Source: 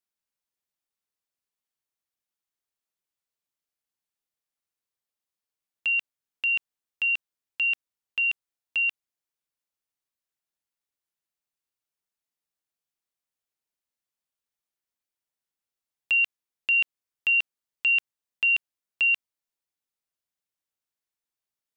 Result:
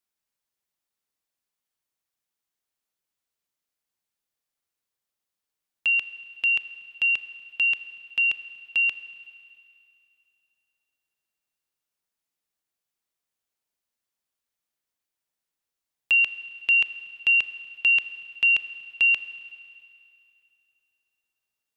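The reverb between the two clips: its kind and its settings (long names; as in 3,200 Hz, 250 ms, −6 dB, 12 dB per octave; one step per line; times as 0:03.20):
four-comb reverb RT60 2.6 s, combs from 26 ms, DRR 12.5 dB
level +3 dB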